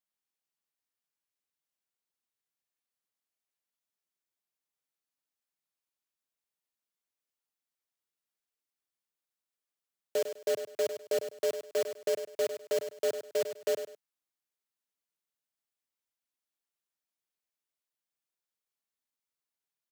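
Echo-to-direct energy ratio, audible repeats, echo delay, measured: -9.5 dB, 2, 0.101 s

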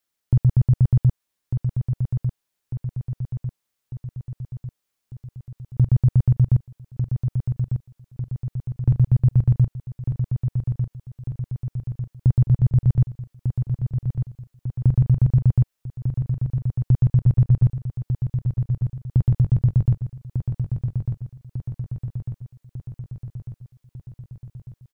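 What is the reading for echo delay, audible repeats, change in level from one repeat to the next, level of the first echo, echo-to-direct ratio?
1.198 s, 6, -4.5 dB, -7.0 dB, -5.0 dB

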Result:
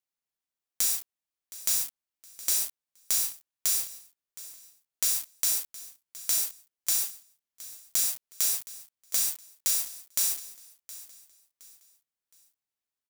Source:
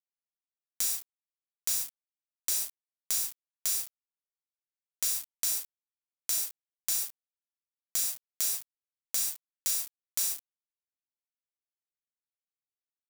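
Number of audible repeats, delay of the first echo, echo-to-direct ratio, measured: 2, 0.717 s, -17.0 dB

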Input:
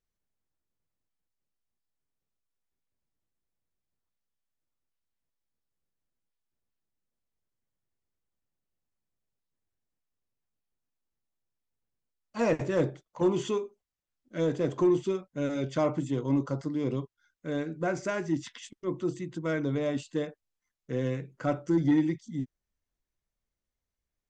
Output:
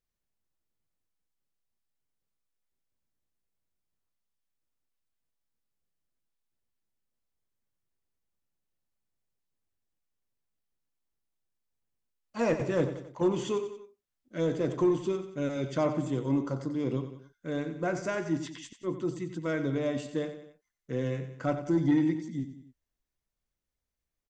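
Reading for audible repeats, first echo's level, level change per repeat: 3, -11.0 dB, -6.0 dB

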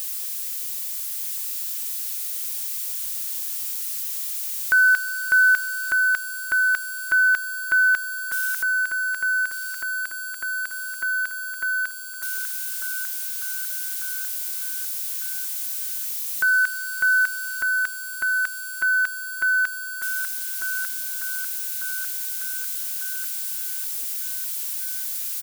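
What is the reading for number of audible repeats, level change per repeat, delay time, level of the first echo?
5, -5.0 dB, 1.197 s, -8.0 dB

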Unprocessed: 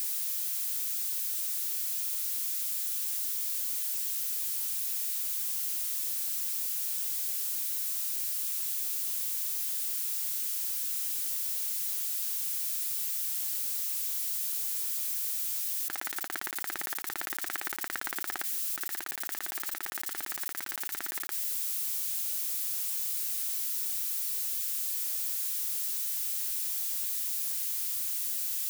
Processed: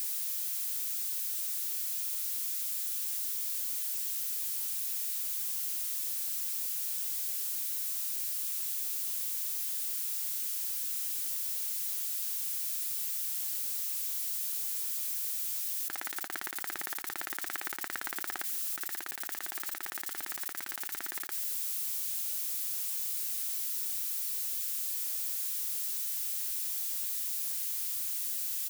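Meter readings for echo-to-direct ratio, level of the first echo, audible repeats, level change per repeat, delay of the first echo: -22.5 dB, -22.5 dB, 1, no steady repeat, 0.369 s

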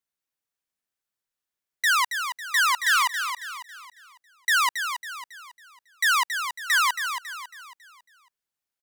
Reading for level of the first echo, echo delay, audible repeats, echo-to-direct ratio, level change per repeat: -8.0 dB, 0.275 s, 4, -7.0 dB, -7.5 dB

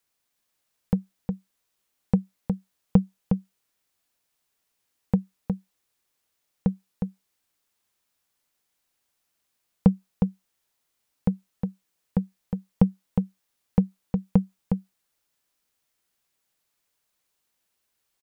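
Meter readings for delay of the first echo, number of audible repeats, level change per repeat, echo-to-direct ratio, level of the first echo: 0.361 s, 1, no steady repeat, -5.5 dB, -5.5 dB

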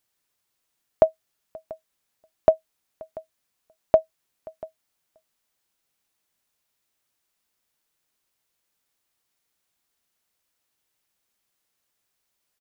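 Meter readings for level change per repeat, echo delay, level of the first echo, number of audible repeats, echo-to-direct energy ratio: no steady repeat, 0.688 s, -21.0 dB, 1, -21.0 dB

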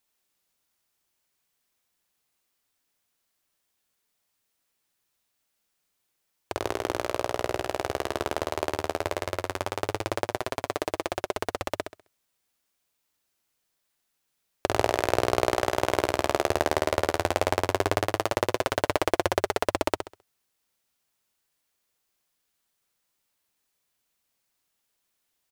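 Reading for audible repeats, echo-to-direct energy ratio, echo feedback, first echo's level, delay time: 3, -6.5 dB, 31%, -7.0 dB, 66 ms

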